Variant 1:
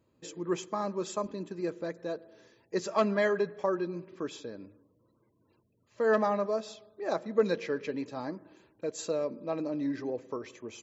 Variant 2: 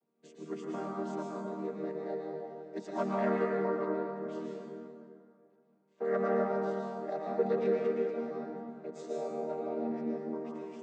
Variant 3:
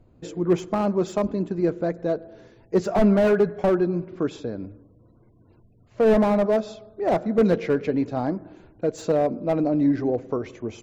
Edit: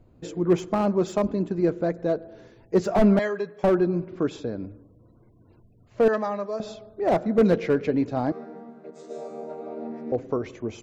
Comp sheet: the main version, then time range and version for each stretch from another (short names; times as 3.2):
3
3.19–3.63 from 1
6.08–6.6 from 1
8.32–10.12 from 2